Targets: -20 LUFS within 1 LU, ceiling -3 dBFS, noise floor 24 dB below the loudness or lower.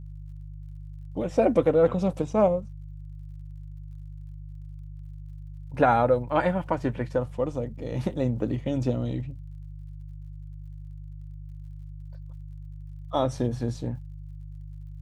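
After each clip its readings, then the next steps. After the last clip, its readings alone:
tick rate 45 per s; hum 50 Hz; highest harmonic 150 Hz; hum level -37 dBFS; loudness -26.0 LUFS; peak level -7.5 dBFS; loudness target -20.0 LUFS
-> de-click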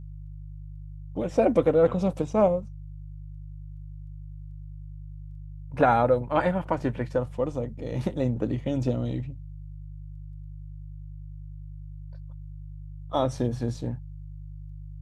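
tick rate 0 per s; hum 50 Hz; highest harmonic 150 Hz; hum level -38 dBFS
-> de-hum 50 Hz, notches 3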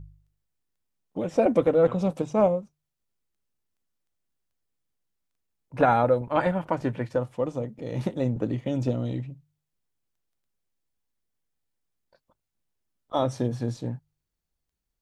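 hum not found; loudness -26.0 LUFS; peak level -8.0 dBFS; loudness target -20.0 LUFS
-> trim +6 dB; peak limiter -3 dBFS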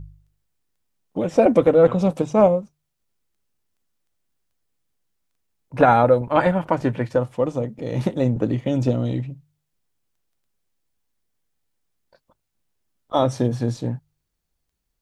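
loudness -20.0 LUFS; peak level -3.0 dBFS; noise floor -77 dBFS

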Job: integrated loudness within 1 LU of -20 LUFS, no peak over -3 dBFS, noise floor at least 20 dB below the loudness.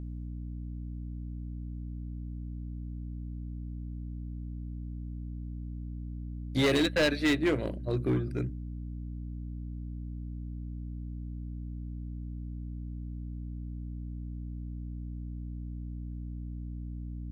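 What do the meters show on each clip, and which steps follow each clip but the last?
clipped samples 0.5%; clipping level -21.0 dBFS; hum 60 Hz; highest harmonic 300 Hz; hum level -36 dBFS; loudness -36.0 LUFS; peak level -21.0 dBFS; loudness target -20.0 LUFS
-> clip repair -21 dBFS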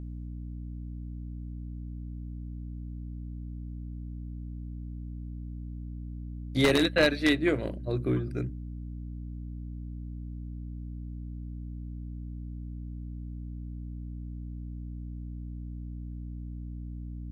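clipped samples 0.0%; hum 60 Hz; highest harmonic 240 Hz; hum level -36 dBFS
-> hum notches 60/120/180/240 Hz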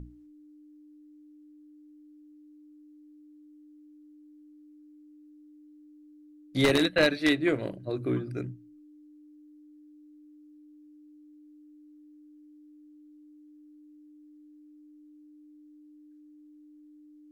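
hum not found; loudness -27.0 LUFS; peak level -11.5 dBFS; loudness target -20.0 LUFS
-> trim +7 dB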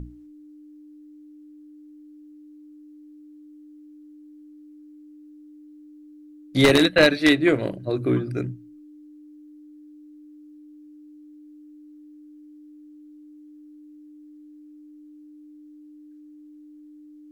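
loudness -20.0 LUFS; peak level -4.5 dBFS; noise floor -47 dBFS

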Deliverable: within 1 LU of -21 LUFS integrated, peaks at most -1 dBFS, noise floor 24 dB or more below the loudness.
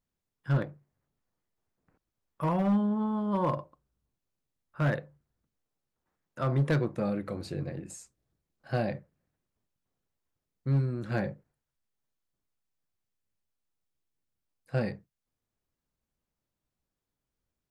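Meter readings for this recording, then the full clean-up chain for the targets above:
clipped samples 0.4%; clipping level -20.5 dBFS; loudness -31.0 LUFS; peak level -20.5 dBFS; loudness target -21.0 LUFS
-> clip repair -20.5 dBFS; trim +10 dB

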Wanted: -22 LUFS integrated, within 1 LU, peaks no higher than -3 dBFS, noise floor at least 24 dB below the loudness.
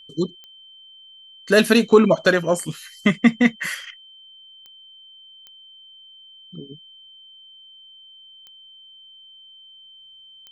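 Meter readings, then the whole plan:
clicks found 5; steady tone 3.1 kHz; tone level -44 dBFS; loudness -19.0 LUFS; peak level -2.0 dBFS; loudness target -22.0 LUFS
-> de-click; band-stop 3.1 kHz, Q 30; trim -3 dB

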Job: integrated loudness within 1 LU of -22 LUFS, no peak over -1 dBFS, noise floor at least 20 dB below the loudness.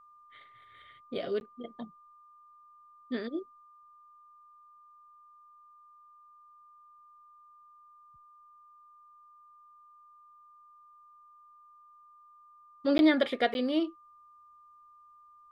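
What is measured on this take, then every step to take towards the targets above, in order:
dropouts 3; longest dropout 11 ms; steady tone 1.2 kHz; tone level -55 dBFS; loudness -30.5 LUFS; peak level -12.5 dBFS; loudness target -22.0 LUFS
-> interpolate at 1.40/12.98/13.54 s, 11 ms; band-stop 1.2 kHz, Q 30; trim +8.5 dB

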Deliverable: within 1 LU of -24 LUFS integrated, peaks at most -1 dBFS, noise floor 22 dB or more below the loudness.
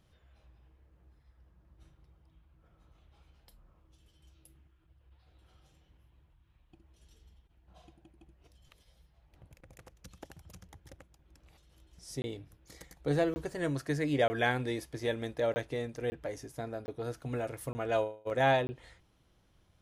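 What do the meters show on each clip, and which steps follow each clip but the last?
dropouts 8; longest dropout 20 ms; loudness -33.5 LUFS; peak level -13.5 dBFS; loudness target -24.0 LUFS
-> interpolate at 12.22/13.34/14.28/15.54/16.10/16.86/17.73/18.67 s, 20 ms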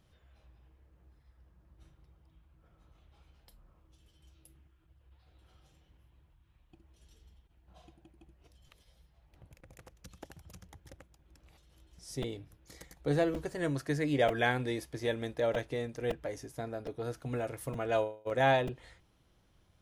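dropouts 0; loudness -33.5 LUFS; peak level -13.5 dBFS; loudness target -24.0 LUFS
-> trim +9.5 dB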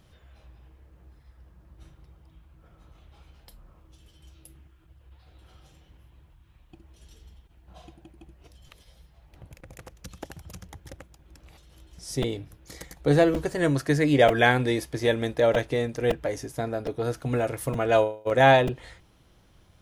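loudness -24.0 LUFS; peak level -4.0 dBFS; noise floor -59 dBFS

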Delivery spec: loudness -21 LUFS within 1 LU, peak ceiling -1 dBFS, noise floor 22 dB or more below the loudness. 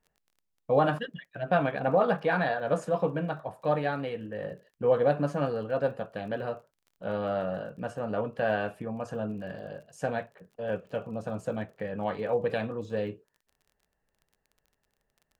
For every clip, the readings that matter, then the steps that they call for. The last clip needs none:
tick rate 24 per s; loudness -30.5 LUFS; peak level -12.5 dBFS; loudness target -21.0 LUFS
-> de-click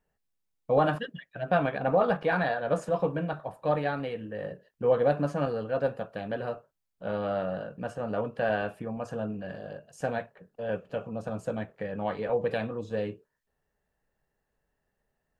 tick rate 0 per s; loudness -30.5 LUFS; peak level -12.5 dBFS; loudness target -21.0 LUFS
-> trim +9.5 dB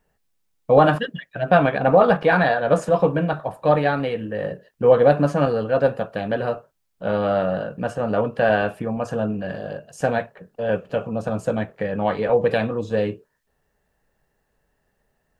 loudness -21.0 LUFS; peak level -3.0 dBFS; noise floor -72 dBFS

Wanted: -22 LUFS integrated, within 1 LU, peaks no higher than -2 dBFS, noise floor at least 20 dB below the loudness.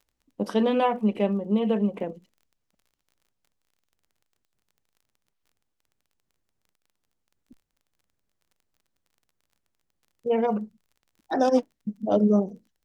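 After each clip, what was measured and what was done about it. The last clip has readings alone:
tick rate 27 per s; loudness -25.0 LUFS; peak level -8.5 dBFS; loudness target -22.0 LUFS
-> de-click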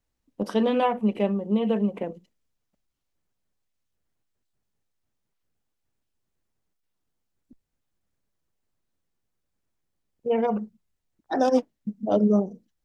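tick rate 0 per s; loudness -25.5 LUFS; peak level -8.5 dBFS; loudness target -22.0 LUFS
-> trim +3.5 dB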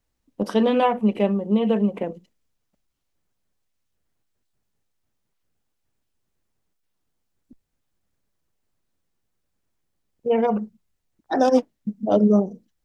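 loudness -22.0 LUFS; peak level -5.0 dBFS; noise floor -76 dBFS

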